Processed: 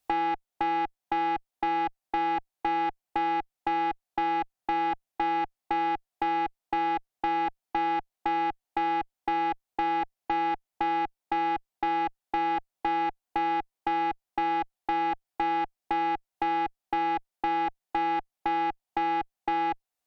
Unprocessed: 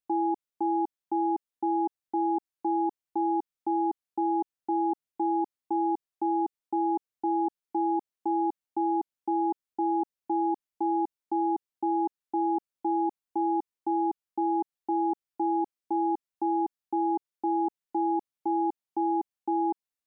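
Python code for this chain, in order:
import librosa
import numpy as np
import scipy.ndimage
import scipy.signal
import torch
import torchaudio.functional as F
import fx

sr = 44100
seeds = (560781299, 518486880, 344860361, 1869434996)

y = fx.peak_eq(x, sr, hz=740.0, db=10.5, octaves=0.49)
y = fx.tube_stage(y, sr, drive_db=24.0, bias=0.4)
y = fx.band_squash(y, sr, depth_pct=70)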